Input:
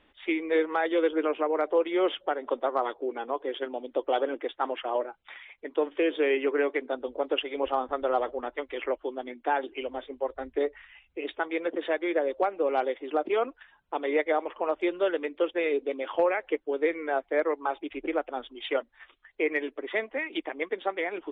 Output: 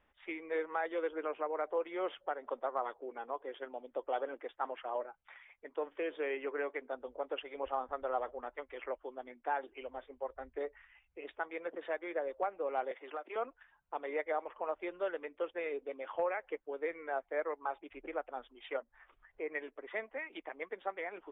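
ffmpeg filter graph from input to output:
-filter_complex "[0:a]asettb=1/sr,asplit=3[s0][s1][s2];[s0]atrim=end=12.914[s3];[s1]atrim=start=12.91:end=13.36,asetpts=PTS-STARTPTS,afade=t=in:d=0.004:c=qsin,afade=t=out:st=0.446:d=0.004:c=qsin,highpass=f=240:w=0.5412,highpass=f=240:w=1.3066,equalizer=f=2200:w=0.34:g=9,acrossover=split=380|1400[s4][s5][s6];[s4]acompressor=threshold=0.00708:ratio=4[s7];[s5]acompressor=threshold=0.0178:ratio=4[s8];[s6]acompressor=threshold=0.00891:ratio=4[s9];[s7][s8][s9]amix=inputs=3:normalize=0[s10];[s2]atrim=start=13.356[s11];[s3][s10]acrossfade=d=0.004:c1=hsin:c2=qsin[s12];[s12][s11]acrossfade=d=0.004:c1=qsin:c2=hsin,asettb=1/sr,asplit=3[s13][s14][s15];[s13]atrim=end=18.774[s16];[s14]atrim=start=18.77:end=19.55,asetpts=PTS-STARTPTS,afade=t=in:d=0.004:c=qsin,afade=t=out:st=0.776:d=0.004:c=qsin,lowpass=f=1200:p=1,acompressor=mode=upward:threshold=0.00708:ratio=2.5:attack=3.2:release=140:knee=2.83:detection=peak[s17];[s15]atrim=start=19.546[s18];[s16][s17]acrossfade=d=0.004:c1=hsin:c2=qsin[s19];[s19][s18]acrossfade=d=0.004:c1=qsin:c2=hsin,lowpass=2000,equalizer=f=310:t=o:w=1.1:g=-9.5,volume=0.473"

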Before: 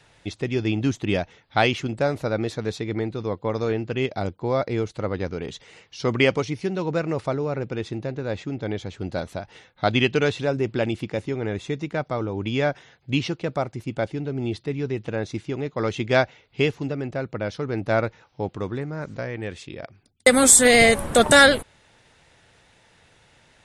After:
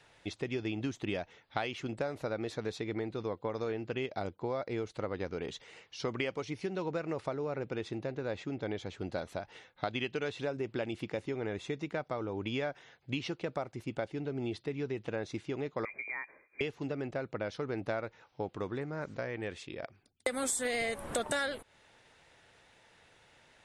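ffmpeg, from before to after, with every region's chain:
-filter_complex "[0:a]asettb=1/sr,asplit=3[s0][s1][s2];[s0]atrim=end=15.854[s3];[s1]atrim=start=15.85:end=16.61,asetpts=PTS-STARTPTS,afade=t=in:d=0.004:c=qsin,afade=t=out:st=0.756:d=0.004:c=qsin,acompressor=threshold=0.0316:ratio=16:attack=3.2:release=140:knee=1:detection=peak,lowpass=f=2100:t=q:w=0.5098,lowpass=f=2100:t=q:w=0.6013,lowpass=f=2100:t=q:w=0.9,lowpass=f=2100:t=q:w=2.563,afreqshift=-2500[s4];[s2]atrim=start=16.606[s5];[s3][s4]acrossfade=d=0.004:c1=hsin:c2=qsin[s6];[s6][s5]acrossfade=d=0.004:c1=qsin:c2=hsin,bass=f=250:g=-6,treble=f=4000:g=-3,acompressor=threshold=0.0447:ratio=6,volume=0.596"

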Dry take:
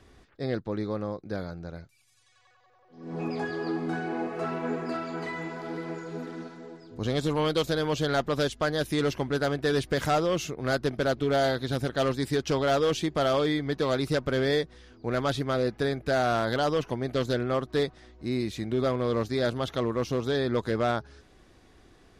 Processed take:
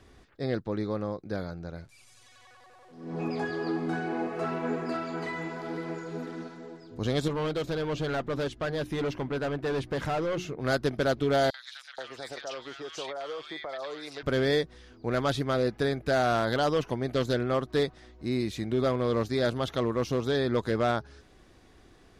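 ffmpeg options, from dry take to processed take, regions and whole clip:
-filter_complex "[0:a]asettb=1/sr,asplit=3[s0][s1][s2];[s0]atrim=end=1.784[s3];[s1]atrim=start=1.78:end=3.12,asetpts=PTS-STARTPTS,afade=t=in:d=0.004:c=qsin,afade=t=out:st=1.336:d=0.004:c=qsin,aeval=exprs='val(0)+0.5*0.00119*sgn(val(0))':c=same,lowpass=f=11000:w=0.5412,lowpass=f=11000:w=1.3066,acompressor=mode=upward:threshold=0.00316:ratio=2.5:attack=3.2:release=140:knee=2.83:detection=peak[s4];[s2]atrim=start=3.116[s5];[s3][s4]acrossfade=d=0.004:c1=hsin:c2=qsin[s6];[s6][s5]acrossfade=d=0.004:c1=qsin:c2=hsin,asettb=1/sr,asplit=3[s7][s8][s9];[s7]atrim=end=7.284[s10];[s8]atrim=start=7.28:end=10.61,asetpts=PTS-STARTPTS,afade=t=in:d=0.004:c=qsin,afade=t=out:st=3.326:d=0.004:c=qsin,bandreject=f=60:t=h:w=6,bandreject=f=120:t=h:w=6,bandreject=f=180:t=h:w=6,bandreject=f=240:t=h:w=6,bandreject=f=300:t=h:w=6,bandreject=f=360:t=h:w=6,asoftclip=type=hard:threshold=0.0501,lowpass=f=2400:p=1[s11];[s9]atrim=start=10.606[s12];[s10][s11]acrossfade=d=0.004:c1=hsin:c2=qsin[s13];[s13][s12]acrossfade=d=0.004:c1=qsin:c2=hsin,asettb=1/sr,asplit=3[s14][s15][s16];[s14]atrim=end=11.504[s17];[s15]atrim=start=11.5:end=14.23,asetpts=PTS-STARTPTS,afade=t=in:d=0.004:c=qsin,afade=t=out:st=2.726:d=0.004:c=qsin,acrossover=split=470 7600:gain=0.0708 1 0.141[s18][s19][s20];[s18][s19][s20]amix=inputs=3:normalize=0,acompressor=threshold=0.0251:ratio=6:attack=3.2:release=140:knee=1:detection=peak,acrossover=split=1400|4600[s21][s22][s23];[s22]adelay=40[s24];[s21]adelay=480[s25];[s25][s24][s23]amix=inputs=3:normalize=0,atrim=end_sample=120393[s26];[s16]atrim=start=14.226[s27];[s17][s26]acrossfade=d=0.004:c1=hsin:c2=qsin[s28];[s28][s27]acrossfade=d=0.004:c1=qsin:c2=hsin"

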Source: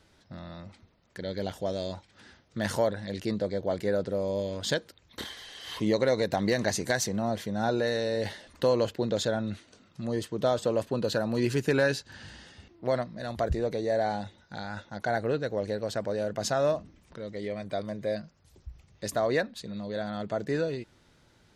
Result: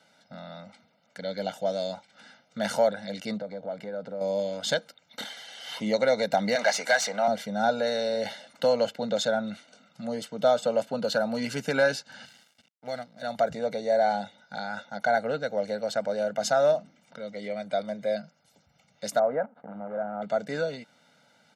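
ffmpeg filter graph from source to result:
-filter_complex "[0:a]asettb=1/sr,asplit=3[s0][s1][s2];[s0]atrim=end=3.374[s3];[s1]atrim=start=3.37:end=4.21,asetpts=PTS-STARTPTS,afade=t=in:d=0.004:c=qsin,afade=t=out:st=0.836:d=0.004:c=qsin,lowpass=f=2000:p=1,acompressor=threshold=0.0224:ratio=4:attack=3.2:release=140:knee=1:detection=peak[s4];[s2]atrim=start=4.206[s5];[s3][s4]acrossfade=d=0.004:c1=hsin:c2=qsin[s6];[s6][s5]acrossfade=d=0.004:c1=qsin:c2=hsin,asettb=1/sr,asplit=3[s7][s8][s9];[s7]atrim=end=6.554[s10];[s8]atrim=start=6.55:end=7.28,asetpts=PTS-STARTPTS,afade=t=in:d=0.004:c=qsin,afade=t=out:st=0.726:d=0.004:c=qsin,highpass=f=790:p=1,asplit=2[s11][s12];[s12]highpass=f=720:p=1,volume=7.94,asoftclip=type=tanh:threshold=0.211[s13];[s11][s13]amix=inputs=2:normalize=0,lowpass=f=2200:p=1,volume=0.501[s14];[s9]atrim=start=7.276[s15];[s10][s14]acrossfade=d=0.004:c1=hsin:c2=qsin[s16];[s16][s15]acrossfade=d=0.004:c1=qsin:c2=hsin,asettb=1/sr,asplit=3[s17][s18][s19];[s17]atrim=end=12.254[s20];[s18]atrim=start=12.25:end=13.22,asetpts=PTS-STARTPTS,afade=t=in:d=0.004:c=qsin,afade=t=out:st=0.966:d=0.004:c=qsin,equalizer=f=730:w=0.41:g=-9.5,aecho=1:1:2.6:0.38,atrim=end_sample=42777,aeval=exprs='sgn(val(0))*max(abs(val(0))-0.00224,0)':c=same[s21];[s19]atrim=start=13.216[s22];[s20][s21]acrossfade=d=0.004:c1=hsin:c2=qsin[s23];[s23][s22]acrossfade=d=0.004:c1=qsin:c2=hsin,asettb=1/sr,asplit=3[s24][s25][s26];[s24]atrim=end=19.194[s27];[s25]atrim=start=19.19:end=20.22,asetpts=PTS-STARTPTS,afade=t=in:d=0.004:c=qsin,afade=t=out:st=1.026:d=0.004:c=qsin,lowshelf=f=360:g=-4,acrusher=bits=7:dc=4:mix=0:aa=0.000001,lowpass=f=1300:w=0.5412,lowpass=f=1300:w=1.3066[s28];[s26]atrim=start=20.216[s29];[s27][s28]acrossfade=d=0.004:c1=hsin:c2=qsin[s30];[s30][s29]acrossfade=d=0.004:c1=qsin:c2=hsin,highpass=f=190:w=0.5412,highpass=f=190:w=1.3066,highshelf=f=11000:g=-7.5,aecho=1:1:1.4:0.98"

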